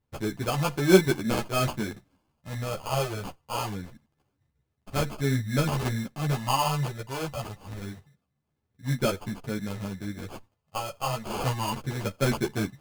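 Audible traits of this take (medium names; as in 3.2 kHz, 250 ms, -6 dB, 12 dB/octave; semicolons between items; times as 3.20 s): phasing stages 4, 0.25 Hz, lowest notch 260–5000 Hz; aliases and images of a low sample rate 1.9 kHz, jitter 0%; a shimmering, thickened sound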